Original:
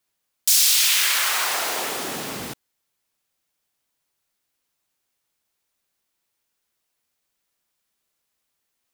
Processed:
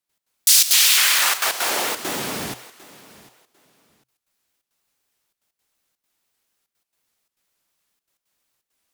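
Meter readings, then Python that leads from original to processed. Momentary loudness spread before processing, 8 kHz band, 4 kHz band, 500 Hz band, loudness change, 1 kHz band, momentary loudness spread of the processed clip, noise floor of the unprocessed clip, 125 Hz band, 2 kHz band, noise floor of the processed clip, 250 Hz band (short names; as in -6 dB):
16 LU, +3.0 dB, +3.0 dB, +3.0 dB, +2.0 dB, +2.5 dB, 15 LU, -77 dBFS, +3.0 dB, +3.0 dB, -85 dBFS, +3.0 dB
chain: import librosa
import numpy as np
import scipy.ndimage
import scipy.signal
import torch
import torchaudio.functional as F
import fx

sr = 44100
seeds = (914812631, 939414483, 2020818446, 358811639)

p1 = fx.hum_notches(x, sr, base_hz=60, count=2)
p2 = fx.step_gate(p1, sr, bpm=169, pattern='.x.xxxx.xxxxxxx', floor_db=-12.0, edge_ms=4.5)
p3 = p2 + fx.echo_feedback(p2, sr, ms=749, feedback_pct=21, wet_db=-19.5, dry=0)
p4 = fx.vibrato_shape(p3, sr, shape='saw_up', rate_hz=4.1, depth_cents=250.0)
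y = p4 * librosa.db_to_amplitude(3.5)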